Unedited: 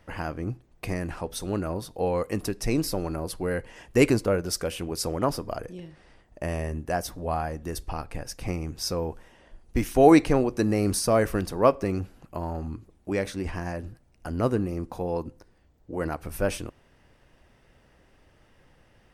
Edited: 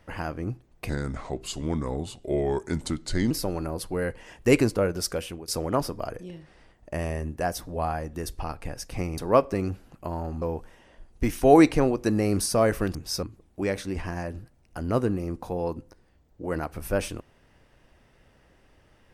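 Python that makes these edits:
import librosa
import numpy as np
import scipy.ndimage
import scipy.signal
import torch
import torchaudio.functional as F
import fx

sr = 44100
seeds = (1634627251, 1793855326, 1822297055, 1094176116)

y = fx.edit(x, sr, fx.speed_span(start_s=0.89, length_s=1.91, speed=0.79),
    fx.fade_out_to(start_s=4.56, length_s=0.41, curve='qsin', floor_db=-15.5),
    fx.swap(start_s=8.67, length_s=0.28, other_s=11.48, other_length_s=1.24), tone=tone)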